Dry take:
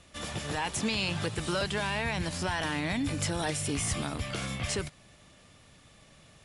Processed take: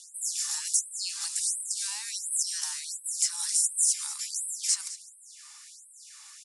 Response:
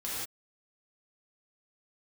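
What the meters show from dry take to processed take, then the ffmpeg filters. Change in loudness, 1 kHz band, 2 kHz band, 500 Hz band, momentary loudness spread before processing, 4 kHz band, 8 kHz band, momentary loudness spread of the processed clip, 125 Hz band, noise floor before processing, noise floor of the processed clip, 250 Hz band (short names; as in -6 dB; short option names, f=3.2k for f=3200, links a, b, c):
+4.0 dB, -17.0 dB, -13.0 dB, under -40 dB, 5 LU, +1.0 dB, +12.5 dB, 22 LU, under -40 dB, -58 dBFS, -52 dBFS, under -40 dB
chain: -filter_complex "[0:a]highshelf=f=5.4k:g=-9.5,acrossover=split=330|4300[a][b][c];[b]acompressor=threshold=-49dB:ratio=10[d];[c]alimiter=level_in=12dB:limit=-24dB:level=0:latency=1:release=374,volume=-12dB[e];[a][d][e]amix=inputs=3:normalize=0,aexciter=amount=6.3:drive=7:freq=4.7k,aecho=1:1:209:0.178,aresample=22050,aresample=44100,afftfilt=real='re*gte(b*sr/1024,750*pow(8000/750,0.5+0.5*sin(2*PI*1.4*pts/sr)))':imag='im*gte(b*sr/1024,750*pow(8000/750,0.5+0.5*sin(2*PI*1.4*pts/sr)))':win_size=1024:overlap=0.75,volume=5.5dB"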